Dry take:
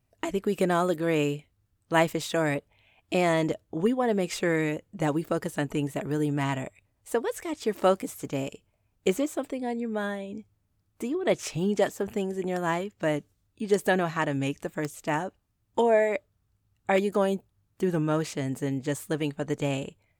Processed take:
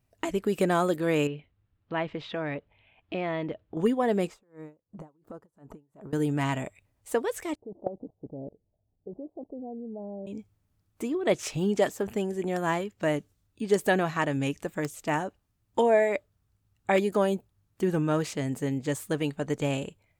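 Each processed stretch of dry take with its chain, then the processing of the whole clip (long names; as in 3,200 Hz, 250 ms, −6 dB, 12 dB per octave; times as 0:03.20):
0:01.27–0:03.77: low-pass filter 3,500 Hz 24 dB per octave + downward compressor 1.5 to 1, threshold −39 dBFS
0:04.27–0:06.13: high shelf with overshoot 1,600 Hz −11.5 dB, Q 1.5 + downward compressor 12 to 1, threshold −37 dBFS + tremolo with a sine in dB 2.8 Hz, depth 28 dB
0:07.55–0:10.27: Butterworth low-pass 790 Hz 48 dB per octave + output level in coarse steps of 19 dB
whole clip: no processing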